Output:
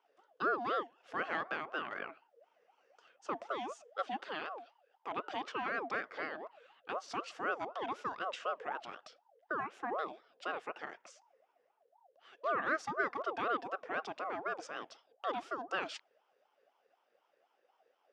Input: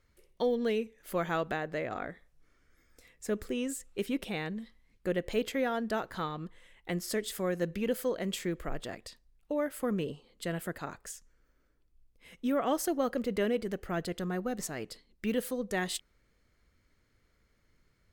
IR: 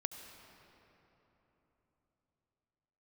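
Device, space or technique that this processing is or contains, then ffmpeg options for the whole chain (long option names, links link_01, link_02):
voice changer toy: -filter_complex "[0:a]aeval=exprs='val(0)*sin(2*PI*710*n/s+710*0.35/4*sin(2*PI*4*n/s))':channel_layout=same,highpass=420,equalizer=frequency=950:width_type=q:width=4:gain=-9,equalizer=frequency=1600:width_type=q:width=4:gain=3,equalizer=frequency=2300:width_type=q:width=4:gain=-6,equalizer=frequency=4100:width_type=q:width=4:gain=-10,lowpass=frequency=4900:width=0.5412,lowpass=frequency=4900:width=1.3066,asettb=1/sr,asplit=3[link_01][link_02][link_03];[link_01]atrim=end=4.464[link_04];[link_02]atrim=start=4.46:end=5.12,asetpts=PTS-STARTPTS,afade=type=in:duration=0.004:curve=qsin,afade=type=out:start_time=0.656:duration=0.004:curve=qsin,equalizer=frequency=200:width=0.93:gain=-14[link_05];[link_03]atrim=start=5.116[link_06];[link_04][link_05]acrossfade=duration=0.004:curve1=hsin:curve2=qsin[link_07];[link_07][link_06]acrossfade=duration=0.004:curve1=qsin:curve2=hsin,volume=1dB"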